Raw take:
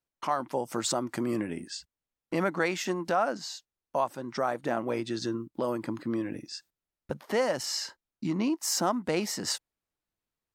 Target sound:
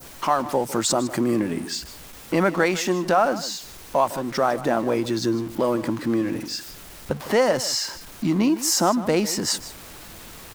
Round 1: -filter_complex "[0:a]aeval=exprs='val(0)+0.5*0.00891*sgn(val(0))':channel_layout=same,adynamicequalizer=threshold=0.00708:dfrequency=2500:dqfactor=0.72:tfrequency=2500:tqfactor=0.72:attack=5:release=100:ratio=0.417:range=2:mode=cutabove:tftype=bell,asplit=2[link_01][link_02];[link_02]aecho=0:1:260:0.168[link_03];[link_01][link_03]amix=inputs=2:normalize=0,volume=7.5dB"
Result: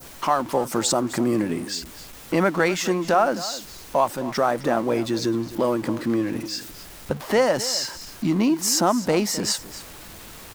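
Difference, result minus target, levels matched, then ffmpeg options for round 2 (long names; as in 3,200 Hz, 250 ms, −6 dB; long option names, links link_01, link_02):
echo 105 ms late
-filter_complex "[0:a]aeval=exprs='val(0)+0.5*0.00891*sgn(val(0))':channel_layout=same,adynamicequalizer=threshold=0.00708:dfrequency=2500:dqfactor=0.72:tfrequency=2500:tqfactor=0.72:attack=5:release=100:ratio=0.417:range=2:mode=cutabove:tftype=bell,asplit=2[link_01][link_02];[link_02]aecho=0:1:155:0.168[link_03];[link_01][link_03]amix=inputs=2:normalize=0,volume=7.5dB"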